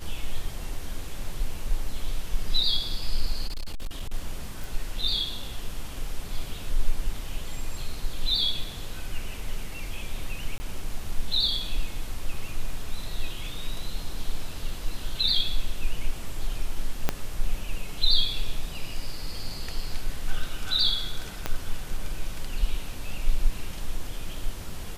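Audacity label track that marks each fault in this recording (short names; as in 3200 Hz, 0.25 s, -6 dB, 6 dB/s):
3.470000	4.140000	clipped -27 dBFS
4.640000	4.640000	pop
10.580000	10.600000	gap 20 ms
17.090000	17.090000	pop -8 dBFS
21.460000	21.460000	pop -12 dBFS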